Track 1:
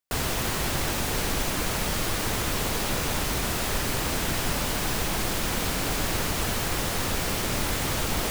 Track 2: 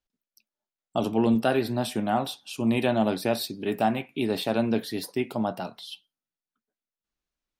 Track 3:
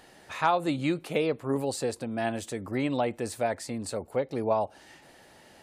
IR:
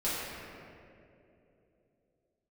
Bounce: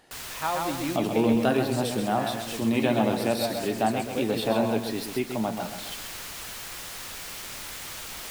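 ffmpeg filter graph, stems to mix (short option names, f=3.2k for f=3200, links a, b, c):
-filter_complex "[0:a]tiltshelf=f=780:g=-7,volume=-14dB[a];[1:a]acrusher=bits=7:mix=0:aa=0.000001,volume=-1dB,asplit=3[b][c][d];[c]volume=-7.5dB[e];[2:a]volume=-4.5dB,asplit=2[f][g];[g]volume=-3dB[h];[d]apad=whole_len=366146[i];[a][i]sidechaincompress=threshold=-30dB:ratio=8:attack=7.8:release=483[j];[e][h]amix=inputs=2:normalize=0,aecho=0:1:131|262|393|524|655:1|0.38|0.144|0.0549|0.0209[k];[j][b][f][k]amix=inputs=4:normalize=0"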